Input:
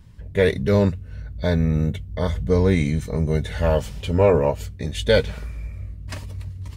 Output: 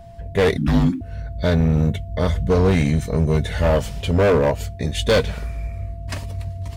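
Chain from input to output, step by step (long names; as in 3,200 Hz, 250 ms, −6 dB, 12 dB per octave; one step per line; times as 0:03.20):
steady tone 680 Hz −46 dBFS
gain into a clipping stage and back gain 16 dB
0:00.57–0:01.01: frequency shifter −350 Hz
level +4 dB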